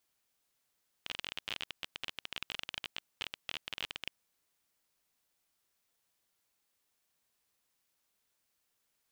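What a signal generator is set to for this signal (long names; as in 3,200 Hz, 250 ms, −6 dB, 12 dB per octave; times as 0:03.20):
Geiger counter clicks 26 per second −20.5 dBFS 3.05 s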